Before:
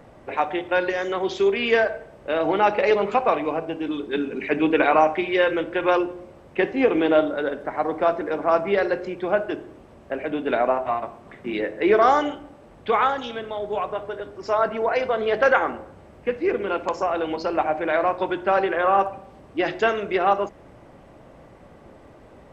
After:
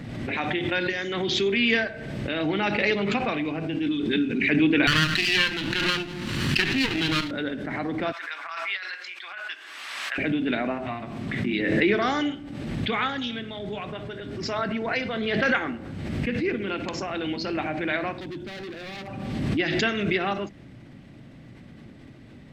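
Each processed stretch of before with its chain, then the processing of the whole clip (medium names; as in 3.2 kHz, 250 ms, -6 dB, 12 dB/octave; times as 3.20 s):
4.87–7.31 s: comb filter that takes the minimum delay 0.68 ms + tilt shelf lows -6 dB, about 1.3 kHz
8.12–10.18 s: Chebyshev high-pass 1.1 kHz, order 3 + compressor with a negative ratio -32 dBFS, ratio -0.5
18.20–19.08 s: peaking EQ 1.7 kHz -13.5 dB 2.3 oct + overload inside the chain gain 30.5 dB
whole clip: graphic EQ 125/250/500/1000/2000/4000 Hz +10/+9/-7/-8/+6/+9 dB; swell ahead of each attack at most 30 dB/s; trim -4.5 dB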